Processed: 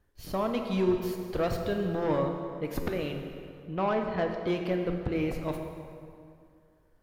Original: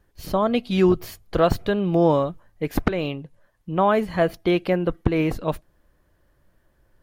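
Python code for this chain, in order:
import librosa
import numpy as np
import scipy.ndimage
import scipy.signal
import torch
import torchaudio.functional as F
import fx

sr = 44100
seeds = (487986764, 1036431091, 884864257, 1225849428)

y = fx.lowpass(x, sr, hz=3400.0, slope=12, at=(3.81, 4.41))
y = 10.0 ** (-14.5 / 20.0) * np.tanh(y / 10.0 ** (-14.5 / 20.0))
y = fx.rev_plate(y, sr, seeds[0], rt60_s=2.4, hf_ratio=0.7, predelay_ms=0, drr_db=3.5)
y = fx.buffer_glitch(y, sr, at_s=(2.82,), block=512, repeats=3)
y = y * 10.0 ** (-7.5 / 20.0)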